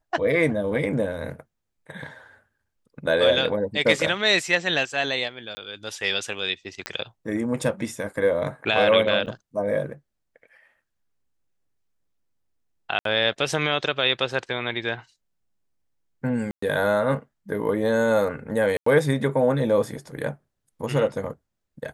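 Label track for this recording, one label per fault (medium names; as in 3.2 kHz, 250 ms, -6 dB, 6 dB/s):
5.550000	5.570000	dropout 20 ms
6.860000	6.860000	pop -10 dBFS
9.260000	9.270000	dropout 7.9 ms
12.990000	13.050000	dropout 63 ms
16.510000	16.620000	dropout 114 ms
18.770000	18.860000	dropout 94 ms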